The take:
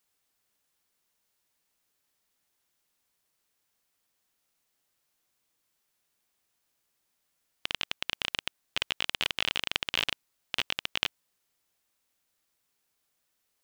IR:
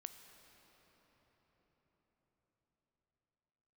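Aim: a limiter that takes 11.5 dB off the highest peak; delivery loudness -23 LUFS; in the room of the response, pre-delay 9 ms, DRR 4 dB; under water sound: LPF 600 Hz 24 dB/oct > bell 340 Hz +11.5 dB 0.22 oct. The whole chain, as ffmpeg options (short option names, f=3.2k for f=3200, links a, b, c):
-filter_complex "[0:a]alimiter=limit=-15.5dB:level=0:latency=1,asplit=2[a][b];[1:a]atrim=start_sample=2205,adelay=9[c];[b][c]afir=irnorm=-1:irlink=0,volume=1dB[d];[a][d]amix=inputs=2:normalize=0,lowpass=f=600:w=0.5412,lowpass=f=600:w=1.3066,equalizer=f=340:t=o:w=0.22:g=11.5,volume=29dB"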